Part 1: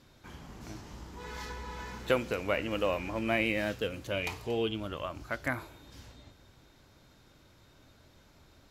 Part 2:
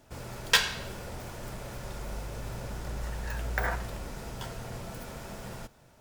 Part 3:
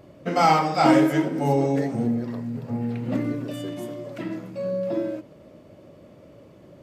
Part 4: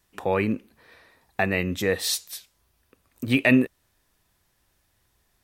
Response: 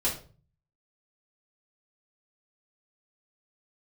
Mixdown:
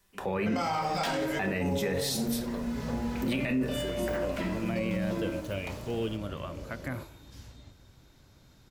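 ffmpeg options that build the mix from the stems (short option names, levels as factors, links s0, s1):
-filter_complex "[0:a]acrossover=split=2800[s0][s1];[s1]acompressor=threshold=0.00398:ratio=4:attack=1:release=60[s2];[s0][s2]amix=inputs=2:normalize=0,bass=f=250:g=6,treble=f=4000:g=4,acrossover=split=490|3000[s3][s4][s5];[s4]acompressor=threshold=0.0178:ratio=6[s6];[s3][s6][s5]amix=inputs=3:normalize=0,adelay=1400,volume=0.794[s7];[1:a]acontrast=55,adelay=500,volume=0.2[s8];[2:a]acompressor=threshold=0.0251:ratio=3,equalizer=f=320:w=0.46:g=-5.5,adelay=200,volume=1.19,asplit=2[s9][s10];[s10]volume=0.501[s11];[3:a]acrossover=split=200[s12][s13];[s13]acompressor=threshold=0.0708:ratio=6[s14];[s12][s14]amix=inputs=2:normalize=0,volume=0.75,asplit=3[s15][s16][s17];[s16]volume=0.282[s18];[s17]apad=whole_len=445661[s19];[s7][s19]sidechaincompress=threshold=0.0158:ratio=8:attack=16:release=1060[s20];[4:a]atrim=start_sample=2205[s21];[s11][s18]amix=inputs=2:normalize=0[s22];[s22][s21]afir=irnorm=-1:irlink=0[s23];[s20][s8][s9][s15][s23]amix=inputs=5:normalize=0,alimiter=limit=0.0841:level=0:latency=1:release=30"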